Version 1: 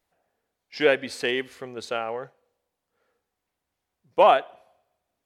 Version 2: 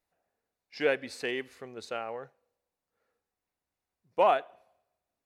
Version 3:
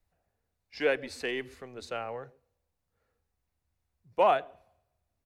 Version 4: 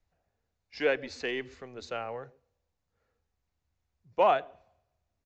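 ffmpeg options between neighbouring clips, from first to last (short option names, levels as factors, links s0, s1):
-af "bandreject=f=3200:w=11,volume=0.447"
-filter_complex "[0:a]acrossover=split=120|510|1700[s0][s1][s2][s3];[s0]aeval=exprs='0.00224*sin(PI/2*5.01*val(0)/0.00224)':c=same[s4];[s1]aecho=1:1:128:0.158[s5];[s4][s5][s2][s3]amix=inputs=4:normalize=0"
-af "aresample=16000,aresample=44100"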